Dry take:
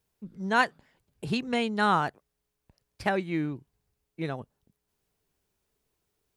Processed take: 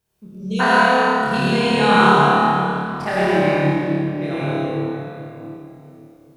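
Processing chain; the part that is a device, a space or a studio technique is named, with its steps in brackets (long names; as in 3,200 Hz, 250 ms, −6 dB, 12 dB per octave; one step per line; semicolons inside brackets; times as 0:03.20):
tunnel (flutter between parallel walls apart 4.7 metres, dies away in 1 s; convolution reverb RT60 3.2 s, pre-delay 76 ms, DRR −8 dB)
healed spectral selection 0:00.34–0:00.58, 640–2,200 Hz before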